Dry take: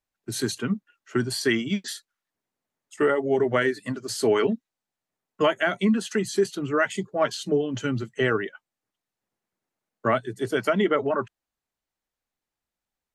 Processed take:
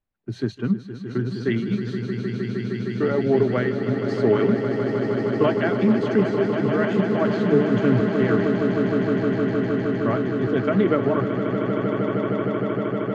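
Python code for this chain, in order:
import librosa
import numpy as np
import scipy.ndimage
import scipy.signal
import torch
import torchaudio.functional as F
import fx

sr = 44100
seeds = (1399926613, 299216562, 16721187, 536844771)

y = fx.low_shelf(x, sr, hz=340.0, db=10.5)
y = fx.tremolo_random(y, sr, seeds[0], hz=3.5, depth_pct=55)
y = fx.air_absorb(y, sr, metres=230.0)
y = fx.echo_swell(y, sr, ms=155, loudest=8, wet_db=-9.5)
y = fx.doppler_dist(y, sr, depth_ms=0.12)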